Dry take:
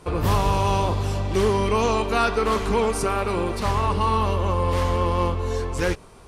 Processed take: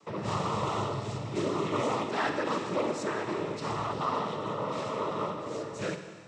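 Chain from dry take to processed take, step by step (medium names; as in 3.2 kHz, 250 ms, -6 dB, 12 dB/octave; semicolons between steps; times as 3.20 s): band-stop 1.5 kHz, Q 11; noise-vocoded speech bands 12; Schroeder reverb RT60 1.8 s, DRR 7.5 dB; trim -8.5 dB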